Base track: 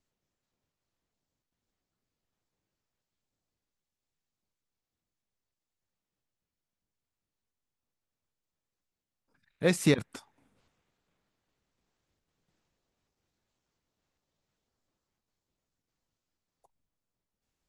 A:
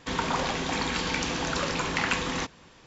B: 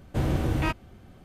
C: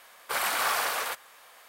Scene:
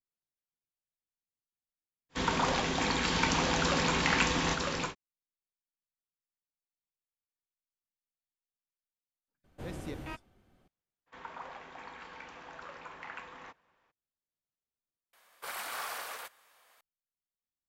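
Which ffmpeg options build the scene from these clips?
ffmpeg -i bed.wav -i cue0.wav -i cue1.wav -i cue2.wav -filter_complex "[1:a]asplit=2[link_01][link_02];[0:a]volume=-20dB[link_03];[link_01]aecho=1:1:953:0.668[link_04];[2:a]equalizer=frequency=86:width=0.5:gain=-6.5[link_05];[link_02]acrossover=split=530 2300:gain=0.2 1 0.141[link_06][link_07][link_08];[link_06][link_07][link_08]amix=inputs=3:normalize=0[link_09];[link_03]asplit=2[link_10][link_11];[link_10]atrim=end=15.134[link_12];[3:a]atrim=end=1.68,asetpts=PTS-STARTPTS,volume=-11.5dB[link_13];[link_11]atrim=start=16.806[link_14];[link_04]atrim=end=2.86,asetpts=PTS-STARTPTS,volume=-1.5dB,afade=type=in:duration=0.1,afade=type=out:start_time=2.76:duration=0.1,adelay=2090[link_15];[link_05]atrim=end=1.24,asetpts=PTS-STARTPTS,volume=-13.5dB,afade=type=in:duration=0.004:curve=hsin,afade=type=out:start_time=1.236:duration=0.004:curve=hsin,adelay=9440[link_16];[link_09]atrim=end=2.86,asetpts=PTS-STARTPTS,volume=-14dB,afade=type=in:duration=0.02,afade=type=out:start_time=2.84:duration=0.02,adelay=487746S[link_17];[link_12][link_13]acrossfade=duration=0.004:curve1=hsin:curve2=hsin[link_18];[link_18][link_14]acrossfade=duration=0.004:curve1=hsin:curve2=hsin[link_19];[link_19][link_15][link_16][link_17]amix=inputs=4:normalize=0" out.wav

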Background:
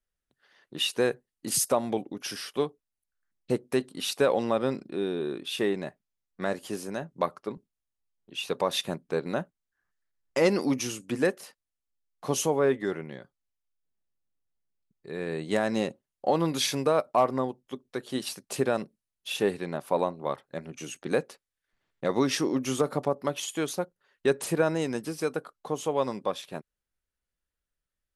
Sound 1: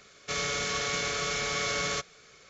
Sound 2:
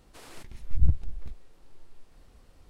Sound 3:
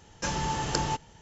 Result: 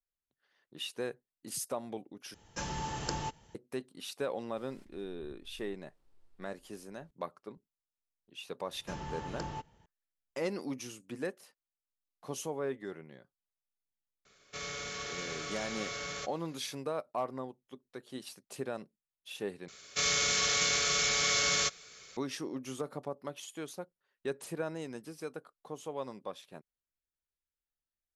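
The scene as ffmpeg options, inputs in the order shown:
ffmpeg -i bed.wav -i cue0.wav -i cue1.wav -i cue2.wav -filter_complex "[3:a]asplit=2[link_01][link_02];[1:a]asplit=2[link_03][link_04];[0:a]volume=-12dB[link_05];[2:a]acompressor=threshold=-33dB:ratio=6:attack=3.2:release=140:knee=1:detection=peak[link_06];[link_02]lowpass=frequency=2300:poles=1[link_07];[link_04]highshelf=frequency=2500:gain=10.5[link_08];[link_05]asplit=3[link_09][link_10][link_11];[link_09]atrim=end=2.344[link_12];[link_01]atrim=end=1.21,asetpts=PTS-STARTPTS,volume=-7.5dB[link_13];[link_10]atrim=start=3.546:end=19.684[link_14];[link_08]atrim=end=2.49,asetpts=PTS-STARTPTS,volume=-4dB[link_15];[link_11]atrim=start=22.166[link_16];[link_06]atrim=end=2.69,asetpts=PTS-STARTPTS,volume=-17dB,afade=type=in:duration=0.004:curve=hsin,afade=type=out:start_time=2.686:duration=0.004:curve=hsin,adelay=4420[link_17];[link_07]atrim=end=1.21,asetpts=PTS-STARTPTS,volume=-10.5dB,afade=type=in:duration=0.004:curve=hsin,afade=type=out:start_time=1.206:duration=0.004:curve=hsin,adelay=8650[link_18];[link_03]atrim=end=2.49,asetpts=PTS-STARTPTS,volume=-9.5dB,afade=type=in:duration=0.004:curve=hsin,afade=type=out:start_time=2.486:duration=0.004:curve=hsin,adelay=14250[link_19];[link_12][link_13]acrossfade=duration=0.004:curve1=hsin:curve2=hsin[link_20];[link_20][link_14]acrossfade=duration=0.004:curve1=hsin:curve2=hsin[link_21];[link_21][link_15]acrossfade=duration=0.004:curve1=hsin:curve2=hsin[link_22];[link_22][link_16]acrossfade=duration=0.004:curve1=hsin:curve2=hsin[link_23];[link_23][link_17][link_18][link_19]amix=inputs=4:normalize=0" out.wav

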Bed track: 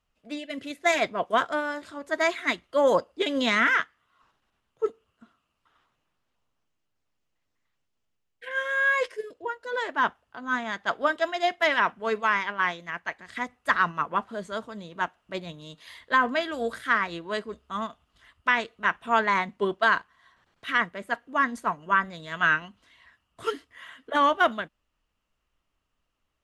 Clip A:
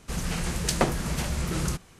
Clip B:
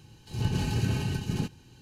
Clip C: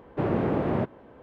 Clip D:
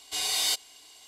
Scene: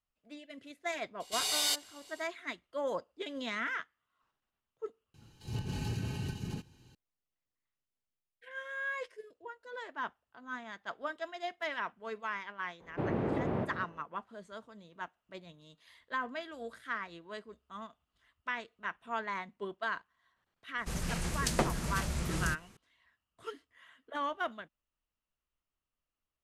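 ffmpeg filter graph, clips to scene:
ffmpeg -i bed.wav -i cue0.wav -i cue1.wav -i cue2.wav -i cue3.wav -filter_complex "[0:a]volume=-14dB[link_01];[2:a]alimiter=limit=-20dB:level=0:latency=1:release=256[link_02];[3:a]asplit=2[link_03][link_04];[link_04]adelay=198.3,volume=-10dB,highshelf=frequency=4000:gain=-4.46[link_05];[link_03][link_05]amix=inputs=2:normalize=0[link_06];[4:a]atrim=end=1.07,asetpts=PTS-STARTPTS,volume=-4dB,afade=type=in:duration=0.004:curve=hsin,afade=type=out:start_time=1.066:duration=0.004:curve=hsin,adelay=1200[link_07];[link_02]atrim=end=1.81,asetpts=PTS-STARTPTS,volume=-6.5dB,afade=type=in:duration=0.004:curve=hsin,afade=type=out:start_time=1.806:duration=0.004:curve=hsin,adelay=5140[link_08];[link_06]atrim=end=1.22,asetpts=PTS-STARTPTS,volume=-7.5dB,afade=type=in:duration=0.004:curve=hsin,afade=type=out:start_time=1.216:duration=0.004:curve=hsin,adelay=12800[link_09];[1:a]atrim=end=1.99,asetpts=PTS-STARTPTS,volume=-6dB,afade=type=in:duration=0.004:curve=hsin,afade=type=out:start_time=1.986:duration=0.004:curve=hsin,adelay=20780[link_10];[link_01][link_07][link_08][link_09][link_10]amix=inputs=5:normalize=0" out.wav

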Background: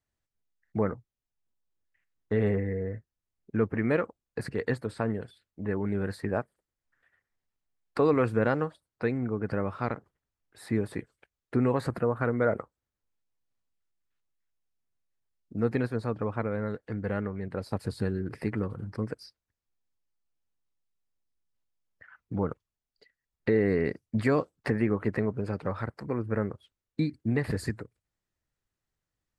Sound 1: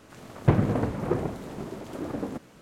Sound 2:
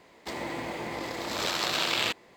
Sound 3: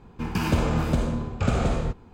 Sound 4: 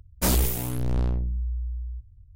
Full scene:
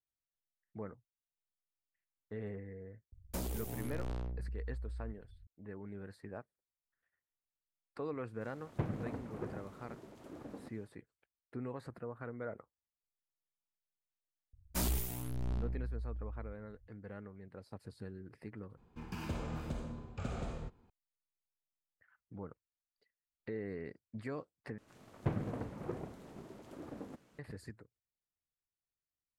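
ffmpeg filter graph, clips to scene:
ffmpeg -i bed.wav -i cue0.wav -i cue1.wav -i cue2.wav -i cue3.wav -filter_complex "[4:a]asplit=2[link_01][link_02];[1:a]asplit=2[link_03][link_04];[0:a]volume=-17dB[link_05];[link_01]acrossover=split=350|800[link_06][link_07][link_08];[link_06]acompressor=threshold=-32dB:ratio=4[link_09];[link_07]acompressor=threshold=-38dB:ratio=4[link_10];[link_08]acompressor=threshold=-40dB:ratio=4[link_11];[link_09][link_10][link_11]amix=inputs=3:normalize=0[link_12];[link_02]bandreject=frequency=490:width=5.2[link_13];[link_05]asplit=3[link_14][link_15][link_16];[link_14]atrim=end=18.774[link_17];[3:a]atrim=end=2.13,asetpts=PTS-STARTPTS,volume=-17dB[link_18];[link_15]atrim=start=20.896:end=24.784[link_19];[link_04]atrim=end=2.61,asetpts=PTS-STARTPTS,volume=-14.5dB[link_20];[link_16]atrim=start=27.386[link_21];[link_12]atrim=end=2.35,asetpts=PTS-STARTPTS,volume=-7.5dB,afade=type=in:duration=0.004:curve=hsin,afade=type=out:start_time=2.346:duration=0.004:curve=hsin,adelay=3120[link_22];[link_03]atrim=end=2.61,asetpts=PTS-STARTPTS,volume=-16dB,afade=type=in:duration=0.1,afade=type=out:start_time=2.51:duration=0.1,adelay=8310[link_23];[link_13]atrim=end=2.35,asetpts=PTS-STARTPTS,volume=-12dB,afade=type=in:duration=0.004:curve=hsin,afade=type=out:start_time=2.346:duration=0.004:curve=hsin,adelay=14530[link_24];[link_17][link_18]acrossfade=duration=0.004:curve1=hsin:curve2=hsin[link_25];[link_25][link_19]acrossfade=duration=0.004:curve1=hsin:curve2=hsin[link_26];[link_26][link_20]acrossfade=duration=0.004:curve1=hsin:curve2=hsin[link_27];[link_27][link_21]acrossfade=duration=0.004:curve1=hsin:curve2=hsin[link_28];[link_28][link_22][link_23][link_24]amix=inputs=4:normalize=0" out.wav

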